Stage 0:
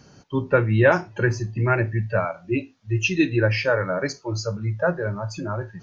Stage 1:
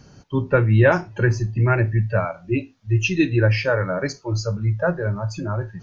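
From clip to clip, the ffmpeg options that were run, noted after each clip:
-af "lowshelf=f=110:g=10"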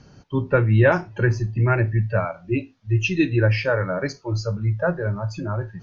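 -af "lowpass=5600,volume=0.891"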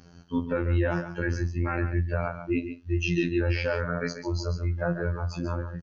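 -af "afftfilt=real='hypot(re,im)*cos(PI*b)':imag='0':win_size=2048:overlap=0.75,alimiter=limit=0.178:level=0:latency=1:release=20,aecho=1:1:140:0.316"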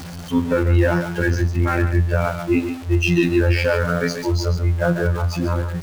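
-af "aeval=exprs='val(0)+0.5*0.0141*sgn(val(0))':c=same,volume=2.51"

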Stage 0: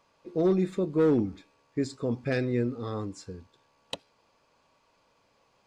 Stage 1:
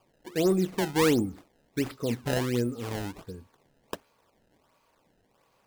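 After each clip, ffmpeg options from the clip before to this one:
-af "acrusher=samples=22:mix=1:aa=0.000001:lfo=1:lforange=35.2:lforate=1.4"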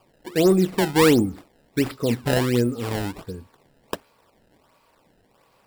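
-af "bandreject=f=6300:w=9.1,volume=2.24"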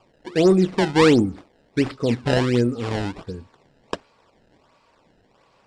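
-af "lowpass=f=7100:w=0.5412,lowpass=f=7100:w=1.3066,volume=1.19" -ar 48000 -c:a libopus -b:a 48k

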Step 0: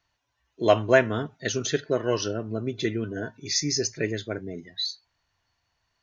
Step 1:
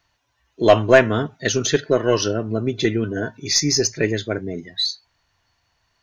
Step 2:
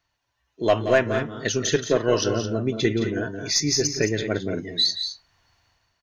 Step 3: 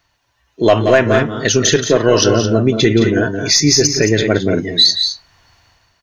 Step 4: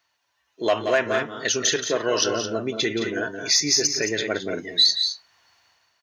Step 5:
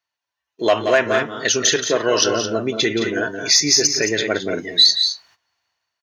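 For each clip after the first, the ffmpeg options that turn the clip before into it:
-af "acontrast=73,aeval=exprs='0.794*(cos(1*acos(clip(val(0)/0.794,-1,1)))-cos(1*PI/2))+0.02*(cos(4*acos(clip(val(0)/0.794,-1,1)))-cos(4*PI/2))+0.00631*(cos(5*acos(clip(val(0)/0.794,-1,1)))-cos(5*PI/2))+0.00891*(cos(7*acos(clip(val(0)/0.794,-1,1)))-cos(7*PI/2))':c=same,volume=1.12"
-af "dynaudnorm=f=110:g=7:m=3.16,aecho=1:1:174.9|215.7:0.282|0.316,volume=0.422"
-af "alimiter=level_in=4.47:limit=0.891:release=50:level=0:latency=1,volume=0.891"
-af "highpass=f=670:p=1,volume=0.473"
-af "agate=range=0.141:threshold=0.00224:ratio=16:detection=peak,volume=1.78"

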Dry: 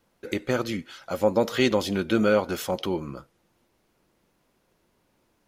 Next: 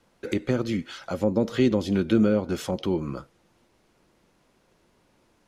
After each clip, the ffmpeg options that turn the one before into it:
-filter_complex "[0:a]lowpass=9900,acrossover=split=390[s0][s1];[s1]acompressor=threshold=0.0126:ratio=4[s2];[s0][s2]amix=inputs=2:normalize=0,volume=1.68"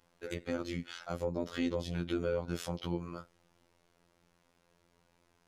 -filter_complex "[0:a]equalizer=f=300:t=o:w=0.88:g=-5.5,asplit=2[s0][s1];[s1]alimiter=limit=0.075:level=0:latency=1:release=372,volume=1[s2];[s0][s2]amix=inputs=2:normalize=0,afftfilt=real='hypot(re,im)*cos(PI*b)':imag='0':win_size=2048:overlap=0.75,volume=0.398"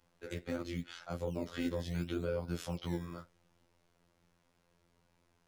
-filter_complex "[0:a]acrossover=split=200[s0][s1];[s0]acrusher=samples=17:mix=1:aa=0.000001:lfo=1:lforange=17:lforate=0.73[s2];[s1]flanger=delay=3.2:depth=5.6:regen=-70:speed=1.7:shape=triangular[s3];[s2][s3]amix=inputs=2:normalize=0,volume=1.12"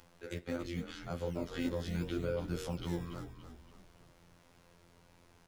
-filter_complex "[0:a]acompressor=mode=upward:threshold=0.00251:ratio=2.5,asplit=2[s0][s1];[s1]asplit=5[s2][s3][s4][s5][s6];[s2]adelay=285,afreqshift=-51,volume=0.316[s7];[s3]adelay=570,afreqshift=-102,volume=0.148[s8];[s4]adelay=855,afreqshift=-153,volume=0.07[s9];[s5]adelay=1140,afreqshift=-204,volume=0.0327[s10];[s6]adelay=1425,afreqshift=-255,volume=0.0155[s11];[s7][s8][s9][s10][s11]amix=inputs=5:normalize=0[s12];[s0][s12]amix=inputs=2:normalize=0"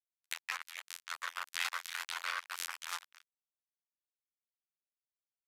-af "acrusher=bits=4:mix=0:aa=0.5,aresample=32000,aresample=44100,highpass=f=1300:w=0.5412,highpass=f=1300:w=1.3066,volume=3.16"

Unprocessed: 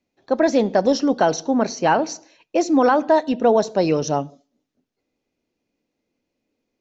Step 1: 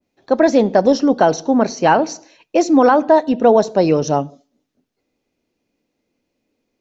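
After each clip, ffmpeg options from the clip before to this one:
-af "adynamicequalizer=threshold=0.0282:dfrequency=1500:dqfactor=0.7:tfrequency=1500:tqfactor=0.7:attack=5:release=100:ratio=0.375:range=3.5:mode=cutabove:tftype=highshelf,volume=1.68"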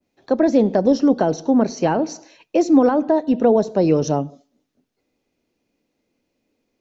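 -filter_complex "[0:a]acrossover=split=490[s0][s1];[s1]acompressor=threshold=0.0501:ratio=3[s2];[s0][s2]amix=inputs=2:normalize=0"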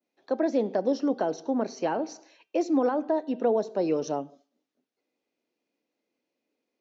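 -af "highpass=290,lowpass=6300,bandreject=f=391.7:t=h:w=4,bandreject=f=783.4:t=h:w=4,bandreject=f=1175.1:t=h:w=4,bandreject=f=1566.8:t=h:w=4,bandreject=f=1958.5:t=h:w=4,bandreject=f=2350.2:t=h:w=4,bandreject=f=2741.9:t=h:w=4,bandreject=f=3133.6:t=h:w=4,bandreject=f=3525.3:t=h:w=4,volume=0.398"

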